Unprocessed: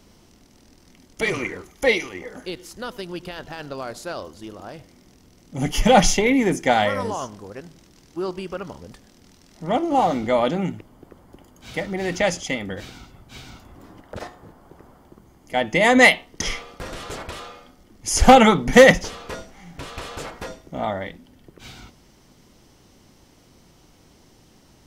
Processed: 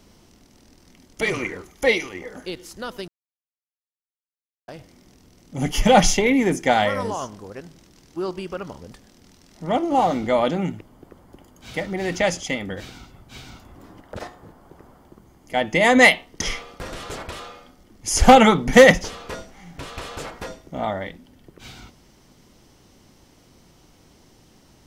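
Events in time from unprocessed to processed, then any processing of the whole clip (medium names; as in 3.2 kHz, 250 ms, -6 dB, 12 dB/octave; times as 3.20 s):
3.08–4.68 s: mute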